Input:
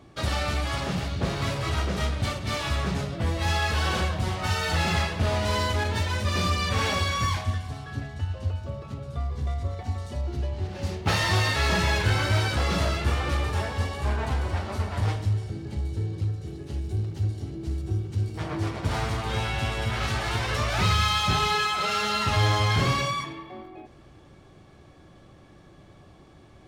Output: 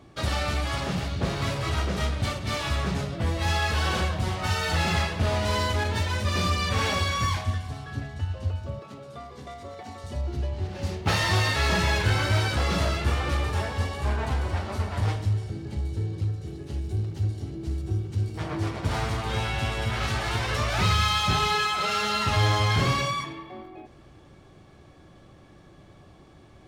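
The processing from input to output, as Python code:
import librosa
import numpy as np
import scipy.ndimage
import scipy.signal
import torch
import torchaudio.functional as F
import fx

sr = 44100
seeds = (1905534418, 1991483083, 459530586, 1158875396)

y = fx.highpass(x, sr, hz=240.0, slope=12, at=(8.79, 10.04))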